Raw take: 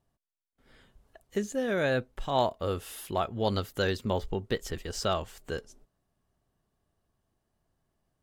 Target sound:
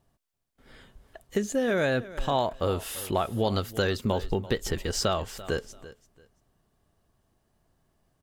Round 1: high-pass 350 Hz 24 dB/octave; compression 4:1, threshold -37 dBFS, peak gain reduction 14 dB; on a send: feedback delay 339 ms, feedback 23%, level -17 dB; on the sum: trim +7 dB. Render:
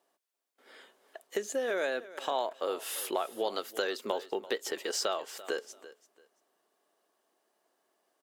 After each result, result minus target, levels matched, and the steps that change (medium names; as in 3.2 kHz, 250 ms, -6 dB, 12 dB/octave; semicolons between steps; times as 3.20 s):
250 Hz band -6.5 dB; compression: peak gain reduction +5.5 dB
remove: high-pass 350 Hz 24 dB/octave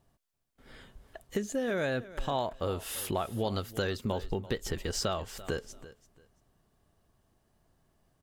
compression: peak gain reduction +5.5 dB
change: compression 4:1, threshold -29.5 dBFS, peak gain reduction 8.5 dB